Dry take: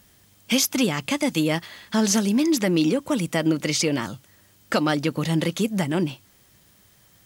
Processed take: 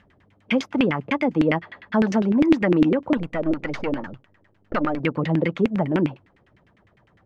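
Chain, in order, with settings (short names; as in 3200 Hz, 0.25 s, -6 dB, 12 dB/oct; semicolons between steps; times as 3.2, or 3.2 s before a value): 3.17–5 half-wave gain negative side -12 dB; LFO low-pass saw down 9.9 Hz 290–2600 Hz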